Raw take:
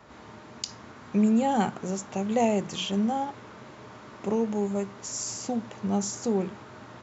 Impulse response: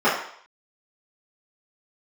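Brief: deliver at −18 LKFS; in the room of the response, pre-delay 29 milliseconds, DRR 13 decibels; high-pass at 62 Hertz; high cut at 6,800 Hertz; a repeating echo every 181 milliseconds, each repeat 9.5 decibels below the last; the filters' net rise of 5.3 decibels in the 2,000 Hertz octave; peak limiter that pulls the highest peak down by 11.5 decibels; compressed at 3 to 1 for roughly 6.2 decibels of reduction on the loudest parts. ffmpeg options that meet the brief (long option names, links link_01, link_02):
-filter_complex "[0:a]highpass=62,lowpass=6800,equalizer=frequency=2000:width_type=o:gain=7,acompressor=threshold=-27dB:ratio=3,alimiter=level_in=1.5dB:limit=-24dB:level=0:latency=1,volume=-1.5dB,aecho=1:1:181|362|543|724:0.335|0.111|0.0365|0.012,asplit=2[link_01][link_02];[1:a]atrim=start_sample=2205,adelay=29[link_03];[link_02][link_03]afir=irnorm=-1:irlink=0,volume=-34dB[link_04];[link_01][link_04]amix=inputs=2:normalize=0,volume=17dB"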